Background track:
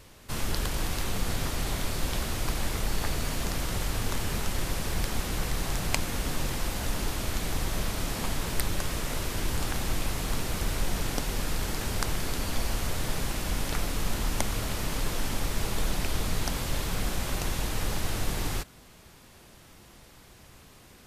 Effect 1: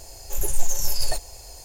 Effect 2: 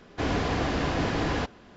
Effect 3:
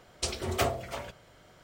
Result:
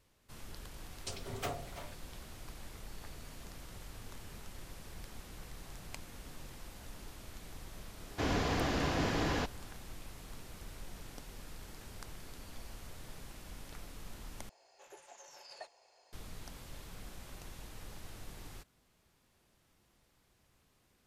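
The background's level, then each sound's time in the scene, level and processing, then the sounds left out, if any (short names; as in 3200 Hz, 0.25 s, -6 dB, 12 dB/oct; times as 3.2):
background track -19 dB
0.84 add 3 -11 dB + frequency shift +19 Hz
8 add 2 -6 dB + high shelf 6800 Hz +10 dB
14.49 replace with 1 -13.5 dB + BPF 580–2900 Hz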